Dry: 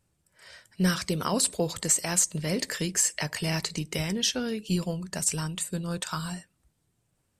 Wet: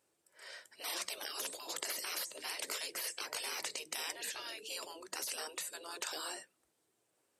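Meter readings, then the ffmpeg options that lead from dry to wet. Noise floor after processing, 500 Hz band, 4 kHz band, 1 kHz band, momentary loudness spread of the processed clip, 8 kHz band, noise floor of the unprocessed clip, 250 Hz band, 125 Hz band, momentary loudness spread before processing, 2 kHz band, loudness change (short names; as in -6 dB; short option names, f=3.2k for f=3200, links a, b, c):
-79 dBFS, -15.0 dB, -7.5 dB, -9.0 dB, 6 LU, -14.0 dB, -74 dBFS, -28.0 dB, under -40 dB, 8 LU, -7.5 dB, -12.0 dB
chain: -af "afftfilt=real='re*lt(hypot(re,im),0.0398)':imag='im*lt(hypot(re,im),0.0398)':win_size=1024:overlap=0.75,highpass=120,lowshelf=f=250:t=q:w=1.5:g=-13.5,volume=-1dB"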